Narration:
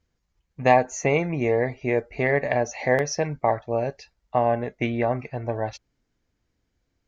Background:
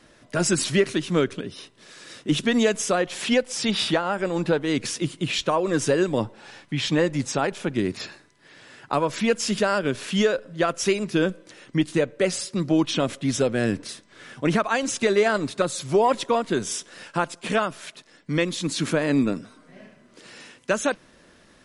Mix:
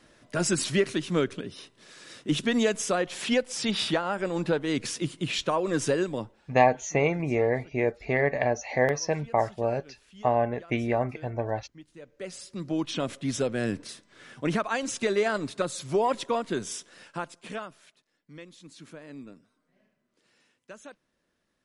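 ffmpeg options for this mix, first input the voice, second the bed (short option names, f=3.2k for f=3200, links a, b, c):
-filter_complex "[0:a]adelay=5900,volume=-2.5dB[a];[1:a]volume=17.5dB,afade=t=out:st=5.9:d=0.61:silence=0.0707946,afade=t=in:st=11.97:d=1.18:silence=0.0841395,afade=t=out:st=16.48:d=1.55:silence=0.141254[b];[a][b]amix=inputs=2:normalize=0"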